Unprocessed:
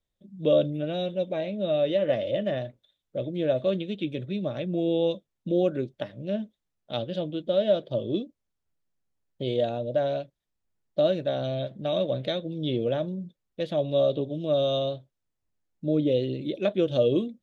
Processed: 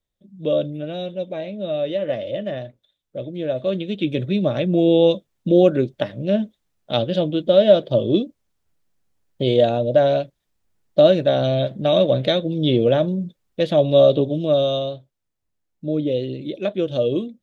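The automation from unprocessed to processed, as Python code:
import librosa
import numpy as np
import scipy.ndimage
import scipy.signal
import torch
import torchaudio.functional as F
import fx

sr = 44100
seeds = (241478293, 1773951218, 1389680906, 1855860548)

y = fx.gain(x, sr, db=fx.line((3.53, 1.0), (4.18, 10.0), (14.29, 10.0), (14.9, 2.0)))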